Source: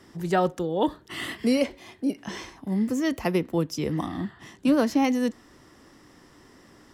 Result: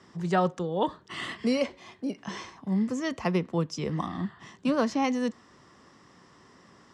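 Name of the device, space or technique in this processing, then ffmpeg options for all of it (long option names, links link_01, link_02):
car door speaker: -af "highpass=82,equalizer=frequency=180:width_type=q:width=4:gain=4,equalizer=frequency=300:width_type=q:width=4:gain=-6,equalizer=frequency=1100:width_type=q:width=4:gain=6,lowpass=frequency=7900:width=0.5412,lowpass=frequency=7900:width=1.3066,volume=-2.5dB"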